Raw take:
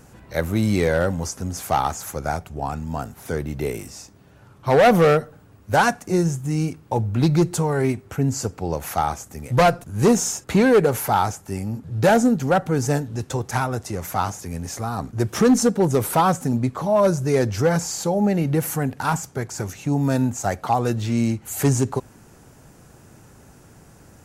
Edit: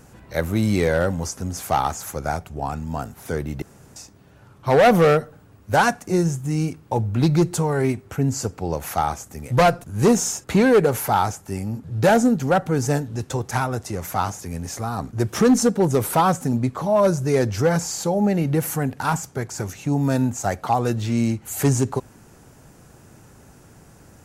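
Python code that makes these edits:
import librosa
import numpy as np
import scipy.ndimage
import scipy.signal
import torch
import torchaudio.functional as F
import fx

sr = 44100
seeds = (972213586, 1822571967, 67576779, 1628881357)

y = fx.edit(x, sr, fx.room_tone_fill(start_s=3.62, length_s=0.34), tone=tone)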